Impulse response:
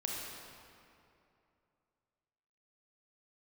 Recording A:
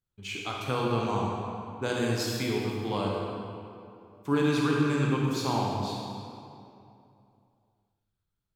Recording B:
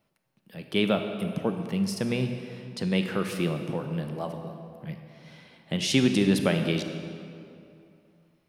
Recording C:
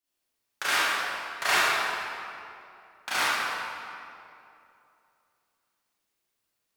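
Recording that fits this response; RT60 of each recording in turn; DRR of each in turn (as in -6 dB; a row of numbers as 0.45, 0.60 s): A; 2.7, 2.7, 2.7 s; -2.5, 6.0, -12.5 dB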